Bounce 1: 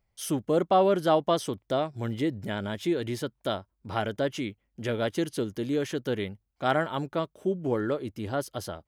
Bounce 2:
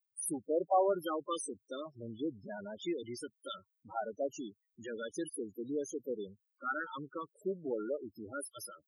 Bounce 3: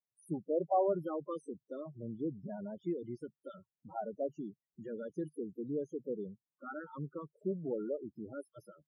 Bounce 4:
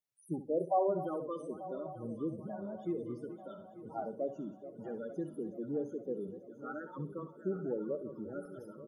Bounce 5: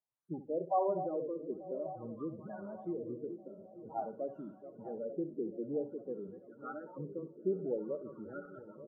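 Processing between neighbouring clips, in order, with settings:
LFO notch square 0.54 Hz 700–2200 Hz; RIAA curve recording; loudest bins only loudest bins 8; trim -4 dB
FFT filter 100 Hz 0 dB, 150 Hz +13 dB, 270 Hz +2 dB, 720 Hz +1 dB, 4 kHz -23 dB; trim -2 dB
backward echo that repeats 445 ms, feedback 74%, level -13 dB; on a send: feedback delay 65 ms, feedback 23%, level -12 dB
LFO low-pass sine 0.51 Hz 400–1600 Hz; trim -4 dB

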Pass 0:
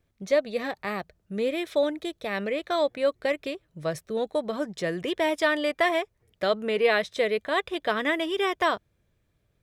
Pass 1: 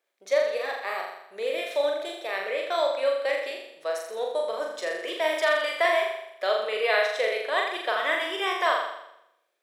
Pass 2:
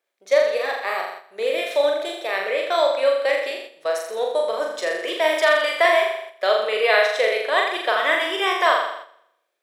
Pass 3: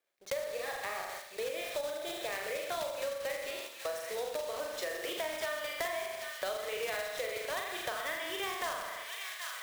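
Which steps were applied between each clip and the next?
high-pass 470 Hz 24 dB/octave; flange 0.38 Hz, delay 4.8 ms, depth 9.3 ms, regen +89%; on a send: flutter echo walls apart 7.1 m, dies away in 0.79 s; on the sum: trim +3.5 dB
gate -42 dBFS, range -6 dB; trim +6 dB
block-companded coder 3-bit; feedback echo behind a high-pass 777 ms, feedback 71%, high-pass 1.6 kHz, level -14.5 dB; compression 6:1, threshold -29 dBFS, peak gain reduction 16 dB; trim -5.5 dB

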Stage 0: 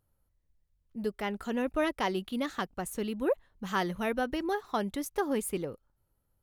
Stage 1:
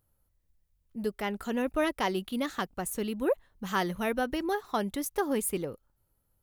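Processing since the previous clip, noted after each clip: treble shelf 10 kHz +8 dB; trim +1 dB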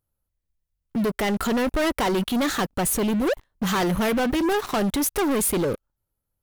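waveshaping leveller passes 5; peak limiter -22.5 dBFS, peak gain reduction 6.5 dB; trim +3 dB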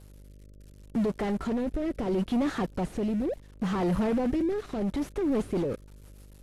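one-bit delta coder 64 kbps, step -47 dBFS; rotary cabinet horn 0.7 Hz, later 6.7 Hz, at 4.81 s; mains buzz 50 Hz, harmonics 12, -48 dBFS -7 dB/octave; trim -2.5 dB

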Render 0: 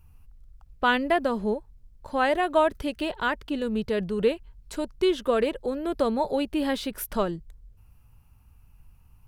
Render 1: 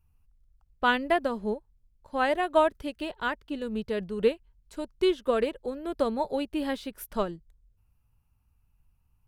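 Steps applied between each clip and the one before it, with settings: upward expansion 1.5:1, over -43 dBFS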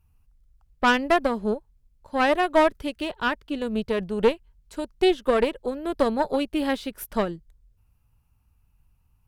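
valve stage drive 19 dB, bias 0.65; trim +8 dB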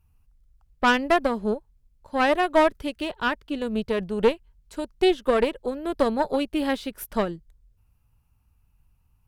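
no audible change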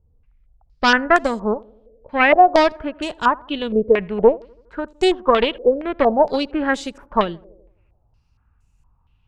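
tape echo 83 ms, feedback 65%, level -22 dB, low-pass 1.3 kHz; step-sequenced low-pass 4.3 Hz 490–7200 Hz; trim +3 dB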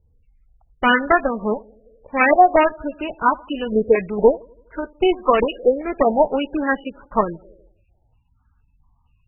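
MP3 8 kbps 24 kHz

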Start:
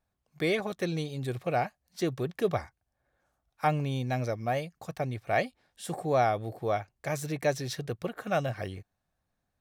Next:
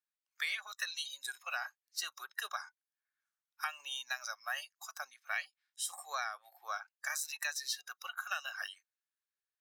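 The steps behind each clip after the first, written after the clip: spectral noise reduction 19 dB; high-pass 1.4 kHz 24 dB/octave; compression 10:1, threshold -42 dBFS, peak gain reduction 14.5 dB; trim +8.5 dB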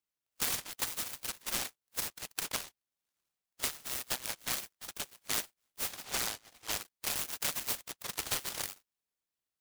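delay time shaken by noise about 2.3 kHz, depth 0.36 ms; trim +3.5 dB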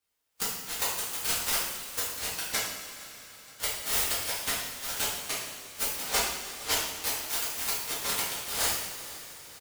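inverted gate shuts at -23 dBFS, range -25 dB; feedback delay 468 ms, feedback 52%, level -21 dB; reverberation, pre-delay 3 ms, DRR -10.5 dB; trim +1.5 dB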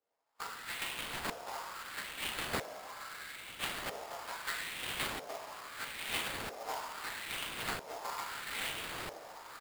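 compression 2.5:1, threshold -41 dBFS, peak gain reduction 12.5 dB; LFO band-pass saw up 0.77 Hz 520–5500 Hz; sample-rate reducer 6 kHz, jitter 20%; trim +10.5 dB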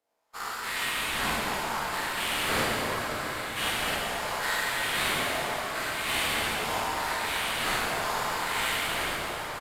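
every event in the spectrogram widened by 120 ms; plate-style reverb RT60 4.9 s, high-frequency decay 0.6×, DRR -5 dB; resampled via 32 kHz

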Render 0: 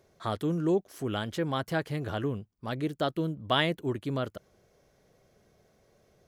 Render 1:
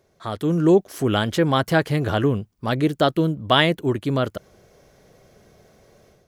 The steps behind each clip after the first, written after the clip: level rider gain up to 10.5 dB; trim +1 dB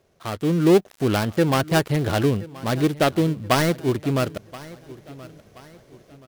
dead-time distortion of 0.18 ms; feedback delay 1027 ms, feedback 41%, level -19.5 dB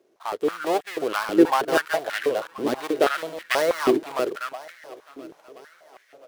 chunks repeated in reverse 206 ms, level -5 dB; step-sequenced high-pass 6.2 Hz 330–1800 Hz; trim -5 dB

